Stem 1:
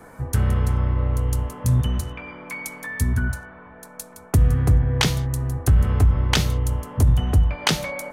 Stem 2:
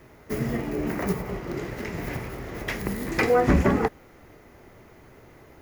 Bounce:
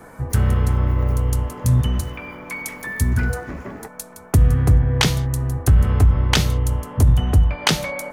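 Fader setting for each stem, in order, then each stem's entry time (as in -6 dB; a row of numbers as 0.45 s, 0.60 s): +2.5 dB, -13.0 dB; 0.00 s, 0.00 s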